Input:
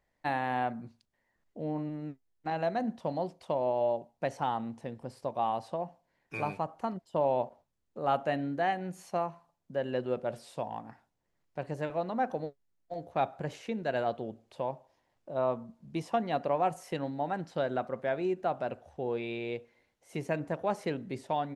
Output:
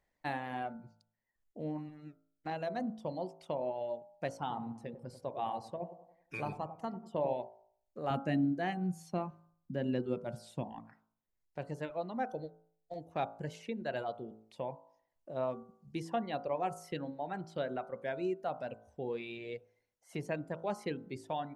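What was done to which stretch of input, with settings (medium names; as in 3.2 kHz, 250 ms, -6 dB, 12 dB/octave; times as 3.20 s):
4.31–7.34 s: feedback echo behind a low-pass 95 ms, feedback 47%, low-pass 1.1 kHz, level -5 dB
8.10–10.80 s: resonant low shelf 380 Hz +7.5 dB, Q 1.5
whole clip: reverb removal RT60 1.4 s; de-hum 54.86 Hz, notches 28; dynamic bell 990 Hz, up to -4 dB, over -45 dBFS, Q 0.87; trim -2 dB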